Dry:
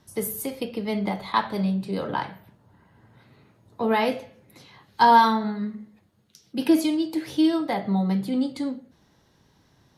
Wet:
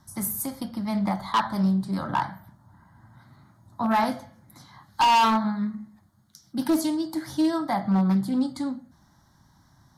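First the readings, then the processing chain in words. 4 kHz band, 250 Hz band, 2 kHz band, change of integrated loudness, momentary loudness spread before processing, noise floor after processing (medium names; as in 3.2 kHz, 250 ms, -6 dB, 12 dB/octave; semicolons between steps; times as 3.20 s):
0.0 dB, -0.5 dB, -2.5 dB, -1.0 dB, 13 LU, -61 dBFS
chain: static phaser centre 1.1 kHz, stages 4; hard clipper -21 dBFS, distortion -7 dB; loudspeaker Doppler distortion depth 0.16 ms; trim +4.5 dB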